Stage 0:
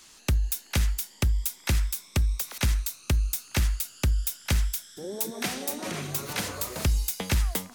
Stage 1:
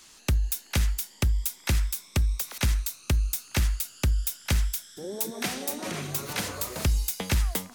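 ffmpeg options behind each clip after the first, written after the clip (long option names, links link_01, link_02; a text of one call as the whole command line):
ffmpeg -i in.wav -af anull out.wav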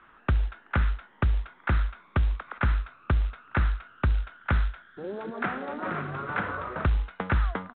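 ffmpeg -i in.wav -af "lowpass=frequency=1400:width_type=q:width=3.7,aresample=8000,acrusher=bits=6:mode=log:mix=0:aa=0.000001,aresample=44100" out.wav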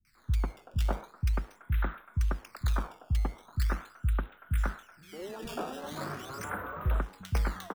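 ffmpeg -i in.wav -filter_complex "[0:a]acrusher=samples=12:mix=1:aa=0.000001:lfo=1:lforange=19.2:lforate=0.41,bass=frequency=250:gain=1,treble=frequency=4000:gain=-4,acrossover=split=180|2000[link_01][link_02][link_03];[link_03]adelay=50[link_04];[link_02]adelay=150[link_05];[link_01][link_05][link_04]amix=inputs=3:normalize=0,volume=-5dB" out.wav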